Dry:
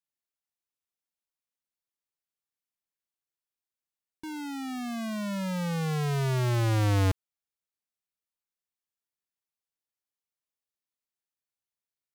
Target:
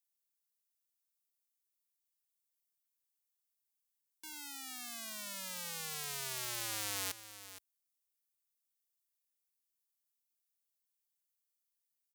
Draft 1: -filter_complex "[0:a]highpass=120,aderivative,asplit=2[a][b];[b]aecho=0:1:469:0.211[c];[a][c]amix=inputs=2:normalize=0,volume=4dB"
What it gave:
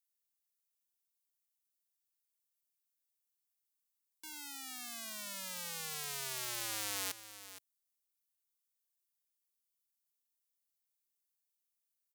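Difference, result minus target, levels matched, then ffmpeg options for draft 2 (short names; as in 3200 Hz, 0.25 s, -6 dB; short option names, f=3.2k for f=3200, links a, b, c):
125 Hz band -2.5 dB
-filter_complex "[0:a]highpass=46,aderivative,asplit=2[a][b];[b]aecho=0:1:469:0.211[c];[a][c]amix=inputs=2:normalize=0,volume=4dB"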